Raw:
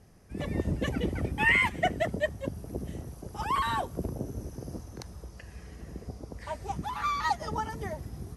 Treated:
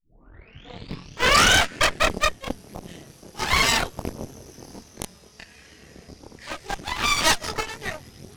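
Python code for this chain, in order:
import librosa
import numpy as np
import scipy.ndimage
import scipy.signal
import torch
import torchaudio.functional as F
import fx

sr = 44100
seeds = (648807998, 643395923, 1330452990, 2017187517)

p1 = fx.tape_start_head(x, sr, length_s=2.11)
p2 = fx.weighting(p1, sr, curve='D')
p3 = fx.schmitt(p2, sr, flips_db=-25.5)
p4 = p2 + F.gain(torch.from_numpy(p3), -7.5).numpy()
p5 = fx.chorus_voices(p4, sr, voices=2, hz=0.24, base_ms=25, depth_ms=3.5, mix_pct=50)
p6 = fx.cheby_harmonics(p5, sr, harmonics=(8,), levels_db=(-6,), full_scale_db=-11.0)
y = F.gain(torch.from_numpy(p6), 2.0).numpy()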